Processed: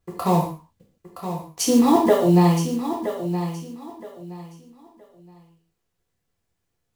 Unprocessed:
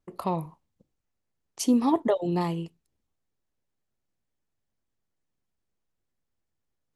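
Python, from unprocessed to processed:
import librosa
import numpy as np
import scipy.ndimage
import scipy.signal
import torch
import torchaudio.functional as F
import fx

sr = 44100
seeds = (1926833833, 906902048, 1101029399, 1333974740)

y = fx.block_float(x, sr, bits=5)
y = fx.echo_feedback(y, sr, ms=970, feedback_pct=25, wet_db=-10.0)
y = fx.rev_gated(y, sr, seeds[0], gate_ms=180, shape='falling', drr_db=-3.0)
y = F.gain(torch.from_numpy(y), 4.0).numpy()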